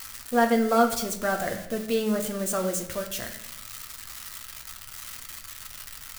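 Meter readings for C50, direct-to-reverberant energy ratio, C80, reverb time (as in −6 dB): 9.5 dB, 2.5 dB, 12.0 dB, 0.85 s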